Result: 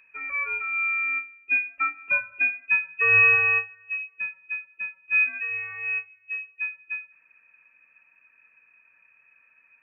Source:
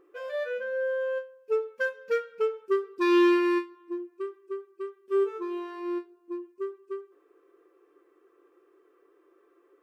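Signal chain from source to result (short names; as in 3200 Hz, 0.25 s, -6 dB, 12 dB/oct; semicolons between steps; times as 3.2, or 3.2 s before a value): inverted band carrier 2900 Hz; gain +3 dB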